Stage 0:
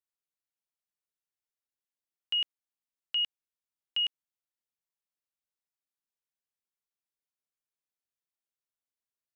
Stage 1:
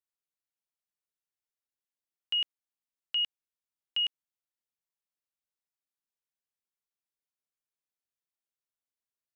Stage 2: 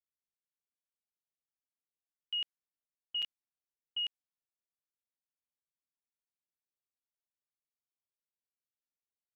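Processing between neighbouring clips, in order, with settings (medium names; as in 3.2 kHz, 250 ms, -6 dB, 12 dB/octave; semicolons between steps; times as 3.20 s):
no audible change
level-controlled noise filter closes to 540 Hz, open at -32.5 dBFS; crackling interface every 0.18 s, samples 256, zero, from 0.52 s; trim -6 dB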